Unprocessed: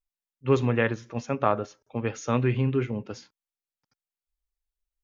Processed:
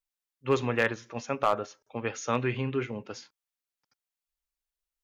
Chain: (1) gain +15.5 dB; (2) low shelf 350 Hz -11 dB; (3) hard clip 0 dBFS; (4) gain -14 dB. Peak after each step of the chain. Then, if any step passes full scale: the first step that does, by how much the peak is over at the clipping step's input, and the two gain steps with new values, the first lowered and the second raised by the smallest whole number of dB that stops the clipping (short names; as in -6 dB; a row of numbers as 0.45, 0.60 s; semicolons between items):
+9.5, +7.0, 0.0, -14.0 dBFS; step 1, 7.0 dB; step 1 +8.5 dB, step 4 -7 dB